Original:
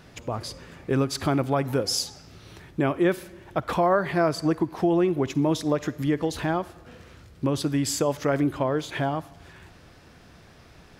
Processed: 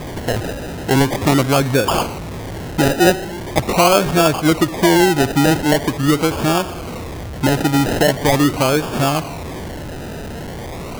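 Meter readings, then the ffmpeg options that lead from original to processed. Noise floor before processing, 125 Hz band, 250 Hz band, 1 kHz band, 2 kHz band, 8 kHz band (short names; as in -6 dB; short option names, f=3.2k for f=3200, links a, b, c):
-52 dBFS, +10.0 dB, +9.0 dB, +10.5 dB, +13.0 dB, +10.5 dB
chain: -af "aeval=exprs='val(0)+0.5*0.0251*sgn(val(0))':c=same,acrusher=samples=31:mix=1:aa=0.000001:lfo=1:lforange=18.6:lforate=0.42,volume=8dB"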